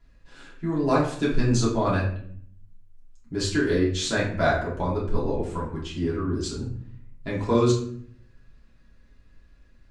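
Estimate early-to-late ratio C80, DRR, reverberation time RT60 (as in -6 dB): 9.5 dB, -7.5 dB, 0.60 s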